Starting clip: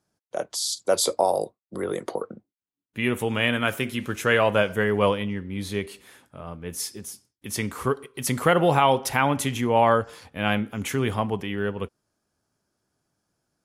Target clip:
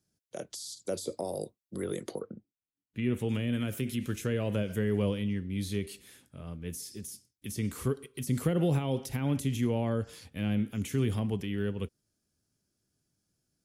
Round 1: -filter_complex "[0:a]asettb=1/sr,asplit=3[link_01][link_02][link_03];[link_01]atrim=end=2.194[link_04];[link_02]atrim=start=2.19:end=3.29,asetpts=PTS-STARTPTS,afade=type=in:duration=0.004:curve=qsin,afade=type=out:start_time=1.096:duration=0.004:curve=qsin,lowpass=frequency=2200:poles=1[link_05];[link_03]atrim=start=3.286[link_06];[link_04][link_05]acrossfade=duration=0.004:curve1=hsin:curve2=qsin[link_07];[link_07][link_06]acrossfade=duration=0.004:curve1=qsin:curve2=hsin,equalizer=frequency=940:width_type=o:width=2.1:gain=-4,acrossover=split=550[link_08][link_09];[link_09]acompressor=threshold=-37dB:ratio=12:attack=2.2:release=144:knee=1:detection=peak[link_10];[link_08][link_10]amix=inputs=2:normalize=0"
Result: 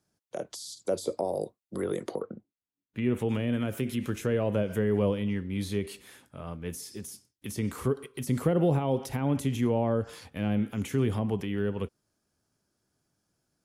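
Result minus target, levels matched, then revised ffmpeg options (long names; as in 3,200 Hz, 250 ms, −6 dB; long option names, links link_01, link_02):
1,000 Hz band +3.5 dB
-filter_complex "[0:a]asettb=1/sr,asplit=3[link_01][link_02][link_03];[link_01]atrim=end=2.194[link_04];[link_02]atrim=start=2.19:end=3.29,asetpts=PTS-STARTPTS,afade=type=in:duration=0.004:curve=qsin,afade=type=out:start_time=1.096:duration=0.004:curve=qsin,lowpass=frequency=2200:poles=1[link_05];[link_03]atrim=start=3.286[link_06];[link_04][link_05]acrossfade=duration=0.004:curve1=hsin:curve2=qsin[link_07];[link_07][link_06]acrossfade=duration=0.004:curve1=qsin:curve2=hsin,equalizer=frequency=940:width_type=o:width=2.1:gain=-15,acrossover=split=550[link_08][link_09];[link_09]acompressor=threshold=-37dB:ratio=12:attack=2.2:release=144:knee=1:detection=peak[link_10];[link_08][link_10]amix=inputs=2:normalize=0"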